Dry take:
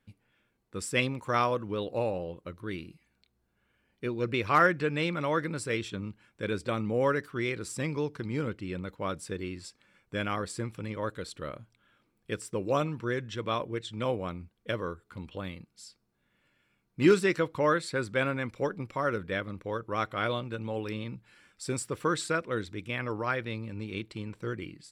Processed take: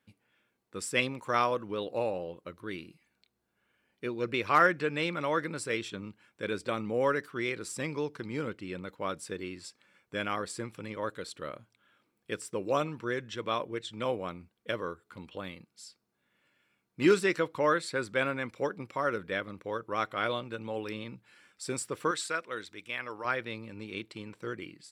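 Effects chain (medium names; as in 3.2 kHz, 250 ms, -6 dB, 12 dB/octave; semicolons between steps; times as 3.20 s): high-pass 260 Hz 6 dB/octave, from 22.11 s 1 kHz, from 23.25 s 310 Hz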